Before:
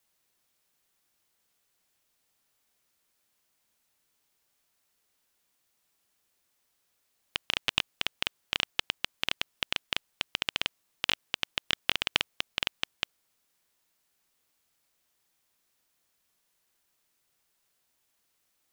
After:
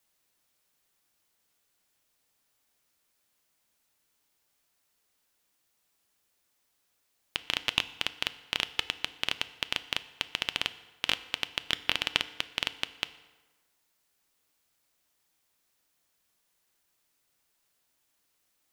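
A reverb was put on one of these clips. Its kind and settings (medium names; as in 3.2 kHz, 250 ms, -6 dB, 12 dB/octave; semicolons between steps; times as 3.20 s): FDN reverb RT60 1.3 s, low-frequency decay 0.85×, high-frequency decay 0.7×, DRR 13 dB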